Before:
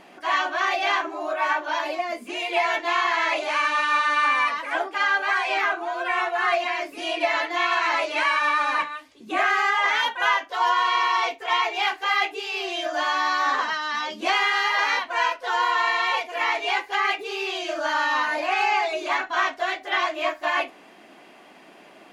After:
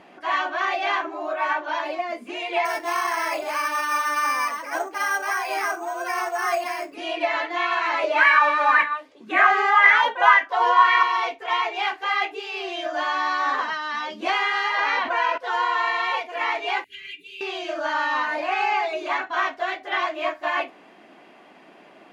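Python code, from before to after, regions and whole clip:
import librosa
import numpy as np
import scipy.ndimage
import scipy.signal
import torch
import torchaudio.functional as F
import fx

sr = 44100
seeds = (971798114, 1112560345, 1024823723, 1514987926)

y = fx.chain(x, sr, fx.lowpass(hz=2800.0, slope=6),
    fx.resample_bad(factor=6, down='none', up='hold'), at=(2.65, 6.94))
y = fx.chain(y, sr, fx.highpass(hz=150.0, slope=12),
    fx.bell_lfo(hz=1.9, low_hz=450.0, high_hz=2000.0, db=13), at=(8.03, 11.03))
y = fx.chain(y, sr, fx.lowpass(hz=8900.0, slope=24),
    fx.high_shelf(hz=6700.0, db=-9.0),
    fx.env_flatten(amount_pct=70), at=(14.78, 15.38))
y = fx.chain(y, sr, fx.ellip_bandstop(low_hz=240.0, high_hz=2700.0, order=3, stop_db=60),
    fx.peak_eq(hz=5300.0, db=-15.0, octaves=0.72), at=(16.84, 17.41))
y = scipy.signal.sosfilt(scipy.signal.butter(2, 55.0, 'highpass', fs=sr, output='sos'), y)
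y = fx.high_shelf(y, sr, hz=4900.0, db=-11.0)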